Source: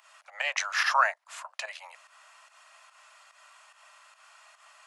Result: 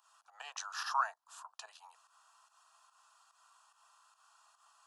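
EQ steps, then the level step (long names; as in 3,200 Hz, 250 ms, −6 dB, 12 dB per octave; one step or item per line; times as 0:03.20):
phaser with its sweep stopped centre 570 Hz, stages 6
−7.5 dB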